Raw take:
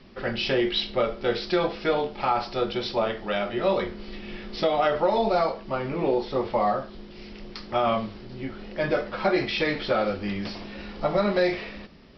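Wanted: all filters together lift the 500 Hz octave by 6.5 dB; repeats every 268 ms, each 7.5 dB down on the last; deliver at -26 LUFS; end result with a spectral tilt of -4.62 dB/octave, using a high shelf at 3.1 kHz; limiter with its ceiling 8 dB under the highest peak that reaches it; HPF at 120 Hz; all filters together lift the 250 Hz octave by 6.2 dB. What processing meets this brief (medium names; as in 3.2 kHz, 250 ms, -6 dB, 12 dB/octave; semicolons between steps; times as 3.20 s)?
high-pass 120 Hz; peaking EQ 250 Hz +6.5 dB; peaking EQ 500 Hz +6.5 dB; treble shelf 3.1 kHz -7 dB; peak limiter -13.5 dBFS; feedback delay 268 ms, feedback 42%, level -7.5 dB; trim -2 dB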